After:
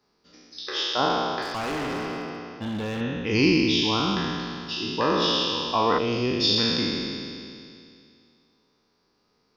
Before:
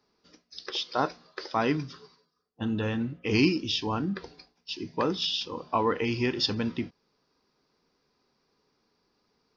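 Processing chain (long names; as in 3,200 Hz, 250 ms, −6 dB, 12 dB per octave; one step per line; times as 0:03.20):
peak hold with a decay on every bin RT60 2.45 s
0:01.42–0:03.01: hard clipping −27 dBFS, distortion −13 dB
0:05.98–0:06.58: flat-topped bell 1,300 Hz −12 dB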